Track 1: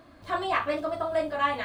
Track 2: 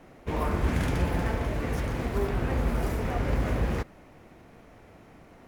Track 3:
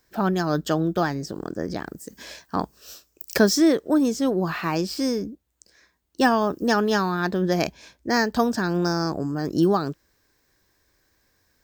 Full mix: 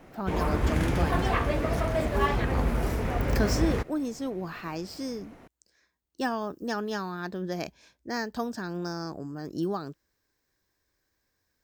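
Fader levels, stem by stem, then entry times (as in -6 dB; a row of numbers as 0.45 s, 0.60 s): -2.5 dB, +0.5 dB, -10.5 dB; 0.80 s, 0.00 s, 0.00 s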